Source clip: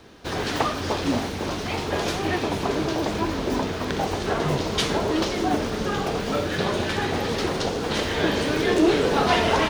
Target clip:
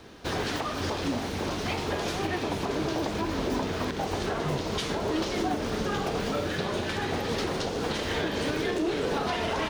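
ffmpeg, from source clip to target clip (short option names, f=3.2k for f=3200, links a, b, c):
-af "alimiter=limit=-19.5dB:level=0:latency=1:release=274"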